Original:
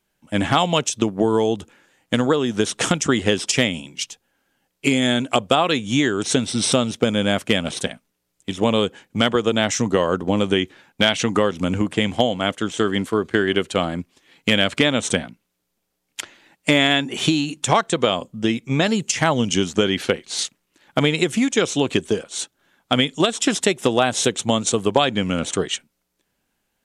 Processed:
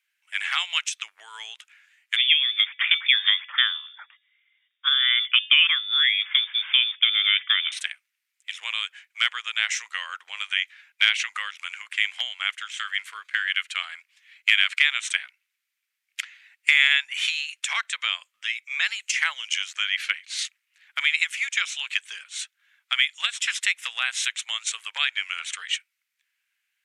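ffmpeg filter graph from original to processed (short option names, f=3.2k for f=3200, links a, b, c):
-filter_complex "[0:a]asettb=1/sr,asplit=3[a][b][c];[a]atrim=end=2.164[d];[b]atrim=start=2.16:end=7.72,asetpts=PTS-STARTPTS,afade=t=in:d=0.004:c=qsin,afade=t=out:st=5.556:d=0.004:c=qsin,bandreject=f=285.3:t=h:w=4,bandreject=f=570.6:t=h:w=4,bandreject=f=855.9:t=h:w=4,bandreject=f=1.1412k:t=h:w=4,bandreject=f=1.4265k:t=h:w=4,bandreject=f=1.7118k:t=h:w=4,bandreject=f=1.9971k:t=h:w=4,lowpass=f=3.1k:t=q:w=0.5098,lowpass=f=3.1k:t=q:w=0.6013,lowpass=f=3.1k:t=q:w=0.9,lowpass=f=3.1k:t=q:w=2.563,afreqshift=-3700[e];[c]atrim=start=7.716[f];[d][e]acrossfade=d=0.004:c1=hsin:c2=qsin[g];[g][f]acrossfade=d=0.004:c1=qsin:c2=hsin,highpass=f=1.4k:w=0.5412,highpass=f=1.4k:w=1.3066,equalizer=f=2.2k:t=o:w=1:g=12,volume=-7dB"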